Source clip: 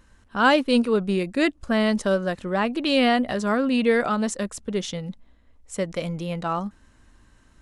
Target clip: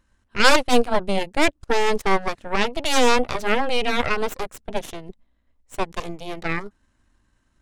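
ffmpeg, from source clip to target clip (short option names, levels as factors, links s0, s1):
-af "bandreject=f=460:w=12,aeval=exprs='0.501*(cos(1*acos(clip(val(0)/0.501,-1,1)))-cos(1*PI/2))+0.126*(cos(3*acos(clip(val(0)/0.501,-1,1)))-cos(3*PI/2))+0.178*(cos(6*acos(clip(val(0)/0.501,-1,1)))-cos(6*PI/2))+0.0178*(cos(8*acos(clip(val(0)/0.501,-1,1)))-cos(8*PI/2))':c=same,volume=1.33"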